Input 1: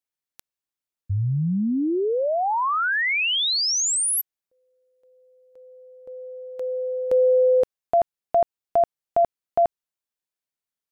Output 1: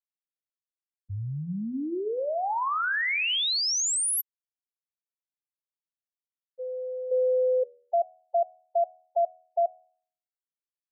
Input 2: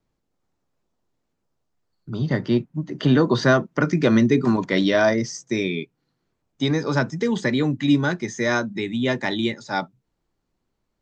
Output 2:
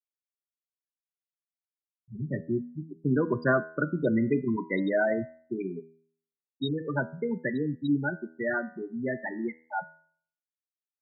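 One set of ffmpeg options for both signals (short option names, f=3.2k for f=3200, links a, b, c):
-af "afftfilt=real='re*gte(hypot(re,im),0.251)':imag='im*gte(hypot(re,im),0.251)':win_size=1024:overlap=0.75,lowshelf=f=420:g=-6.5,bandreject=f=80.7:t=h:w=4,bandreject=f=161.4:t=h:w=4,bandreject=f=242.1:t=h:w=4,bandreject=f=322.8:t=h:w=4,bandreject=f=403.5:t=h:w=4,bandreject=f=484.2:t=h:w=4,bandreject=f=564.9:t=h:w=4,bandreject=f=645.6:t=h:w=4,bandreject=f=726.3:t=h:w=4,bandreject=f=807:t=h:w=4,bandreject=f=887.7:t=h:w=4,bandreject=f=968.4:t=h:w=4,bandreject=f=1.0491k:t=h:w=4,bandreject=f=1.1298k:t=h:w=4,bandreject=f=1.2105k:t=h:w=4,bandreject=f=1.2912k:t=h:w=4,bandreject=f=1.3719k:t=h:w=4,bandreject=f=1.4526k:t=h:w=4,bandreject=f=1.5333k:t=h:w=4,bandreject=f=1.614k:t=h:w=4,bandreject=f=1.6947k:t=h:w=4,bandreject=f=1.7754k:t=h:w=4,bandreject=f=1.8561k:t=h:w=4,bandreject=f=1.9368k:t=h:w=4,bandreject=f=2.0175k:t=h:w=4,bandreject=f=2.0982k:t=h:w=4,bandreject=f=2.1789k:t=h:w=4,bandreject=f=2.2596k:t=h:w=4,bandreject=f=2.3403k:t=h:w=4,bandreject=f=2.421k:t=h:w=4,bandreject=f=2.5017k:t=h:w=4,bandreject=f=2.5824k:t=h:w=4,bandreject=f=2.6631k:t=h:w=4,bandreject=f=2.7438k:t=h:w=4,bandreject=f=2.8245k:t=h:w=4,volume=-3.5dB"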